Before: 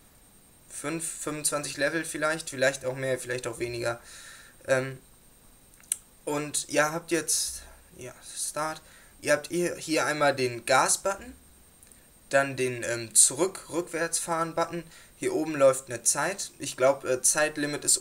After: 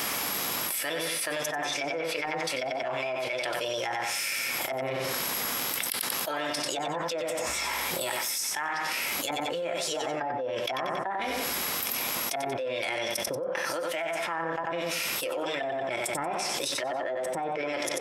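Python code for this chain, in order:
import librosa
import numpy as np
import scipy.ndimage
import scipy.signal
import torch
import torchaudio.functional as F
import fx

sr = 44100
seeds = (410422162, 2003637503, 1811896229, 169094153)

p1 = fx.dmg_crackle(x, sr, seeds[0], per_s=36.0, level_db=-46.0)
p2 = fx.weighting(p1, sr, curve='A')
p3 = fx.env_lowpass_down(p2, sr, base_hz=320.0, full_db=-22.5)
p4 = fx.formant_shift(p3, sr, semitones=5)
p5 = p4 + fx.echo_feedback(p4, sr, ms=92, feedback_pct=28, wet_db=-9.0, dry=0)
p6 = fx.env_flatten(p5, sr, amount_pct=100)
y = p6 * 10.0 ** (-5.0 / 20.0)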